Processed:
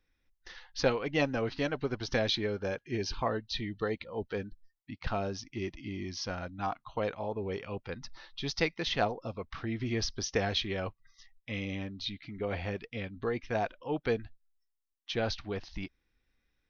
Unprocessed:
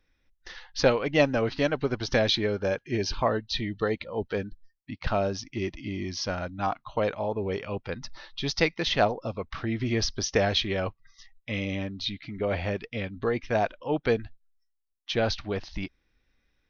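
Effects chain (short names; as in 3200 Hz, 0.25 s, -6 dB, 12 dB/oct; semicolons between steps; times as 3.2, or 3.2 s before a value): notch 600 Hz, Q 12; gain -5.5 dB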